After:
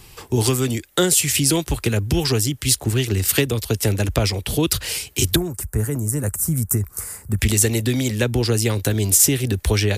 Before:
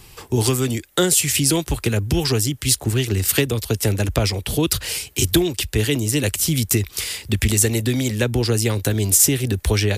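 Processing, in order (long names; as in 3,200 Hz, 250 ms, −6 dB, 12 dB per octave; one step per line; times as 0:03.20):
0:05.36–0:07.39: drawn EQ curve 190 Hz 0 dB, 310 Hz −7 dB, 1,400 Hz 0 dB, 3,300 Hz −30 dB, 8,400 Hz 0 dB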